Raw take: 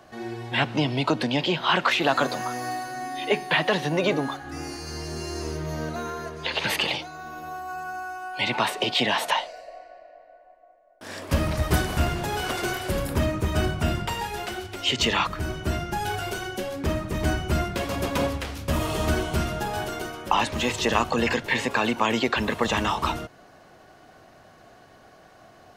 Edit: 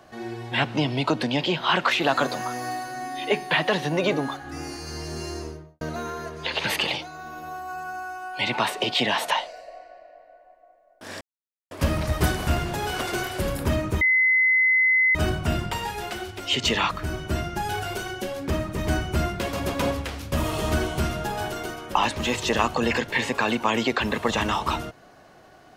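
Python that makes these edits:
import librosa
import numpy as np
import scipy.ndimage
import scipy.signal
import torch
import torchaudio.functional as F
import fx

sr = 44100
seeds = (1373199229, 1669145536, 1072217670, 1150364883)

y = fx.studio_fade_out(x, sr, start_s=5.25, length_s=0.56)
y = fx.edit(y, sr, fx.insert_silence(at_s=11.21, length_s=0.5),
    fx.insert_tone(at_s=13.51, length_s=1.14, hz=2040.0, db=-16.0), tone=tone)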